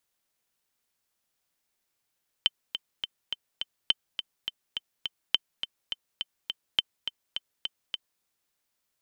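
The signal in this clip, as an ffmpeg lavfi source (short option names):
-f lavfi -i "aevalsrc='pow(10,(-8-9.5*gte(mod(t,5*60/208),60/208))/20)*sin(2*PI*3080*mod(t,60/208))*exp(-6.91*mod(t,60/208)/0.03)':d=5.76:s=44100"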